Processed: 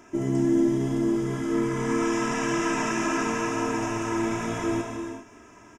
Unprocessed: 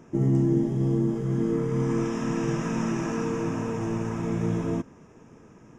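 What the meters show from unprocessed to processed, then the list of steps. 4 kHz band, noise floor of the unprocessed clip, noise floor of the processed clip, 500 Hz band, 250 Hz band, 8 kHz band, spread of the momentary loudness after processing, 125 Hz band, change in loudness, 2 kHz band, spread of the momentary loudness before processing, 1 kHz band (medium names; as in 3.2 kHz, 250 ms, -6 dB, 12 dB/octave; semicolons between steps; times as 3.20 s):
+8.5 dB, -52 dBFS, -51 dBFS, +1.5 dB, +1.0 dB, no reading, 6 LU, -7.0 dB, +0.5 dB, +9.5 dB, 6 LU, +7.5 dB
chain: tilt shelf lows -6.5 dB, about 640 Hz; comb 3 ms, depth 72%; gated-style reverb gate 430 ms flat, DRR 2 dB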